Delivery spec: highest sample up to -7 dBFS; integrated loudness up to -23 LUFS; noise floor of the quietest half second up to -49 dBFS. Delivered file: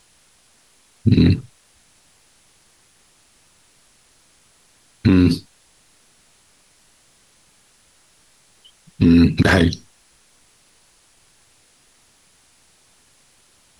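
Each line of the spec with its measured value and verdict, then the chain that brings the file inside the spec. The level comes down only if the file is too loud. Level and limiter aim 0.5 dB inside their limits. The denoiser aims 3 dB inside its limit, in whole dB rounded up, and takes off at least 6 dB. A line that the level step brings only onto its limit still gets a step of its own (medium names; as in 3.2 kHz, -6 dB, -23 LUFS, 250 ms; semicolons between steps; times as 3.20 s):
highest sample -4.5 dBFS: fail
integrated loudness -16.5 LUFS: fail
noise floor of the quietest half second -56 dBFS: pass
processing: trim -7 dB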